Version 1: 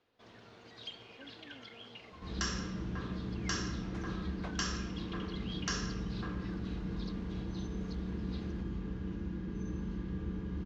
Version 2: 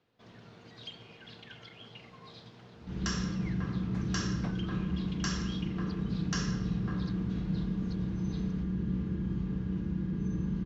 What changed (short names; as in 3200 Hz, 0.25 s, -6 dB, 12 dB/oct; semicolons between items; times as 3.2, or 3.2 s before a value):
speech: muted; second sound: entry +0.65 s; master: add bell 150 Hz +11.5 dB 0.9 oct